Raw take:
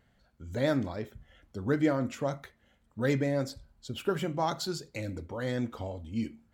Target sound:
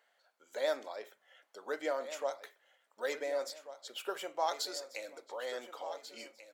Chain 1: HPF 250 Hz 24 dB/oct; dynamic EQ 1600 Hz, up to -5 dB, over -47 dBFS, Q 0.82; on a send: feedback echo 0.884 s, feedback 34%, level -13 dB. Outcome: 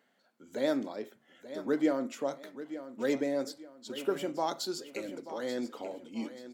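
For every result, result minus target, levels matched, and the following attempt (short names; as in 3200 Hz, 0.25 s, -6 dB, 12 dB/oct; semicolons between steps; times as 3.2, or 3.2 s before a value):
250 Hz band +14.5 dB; echo 0.555 s early
HPF 530 Hz 24 dB/oct; dynamic EQ 1600 Hz, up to -5 dB, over -47 dBFS, Q 0.82; on a send: feedback echo 0.884 s, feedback 34%, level -13 dB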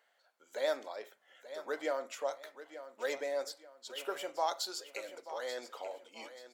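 echo 0.555 s early
HPF 530 Hz 24 dB/oct; dynamic EQ 1600 Hz, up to -5 dB, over -47 dBFS, Q 0.82; on a send: feedback echo 1.439 s, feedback 34%, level -13 dB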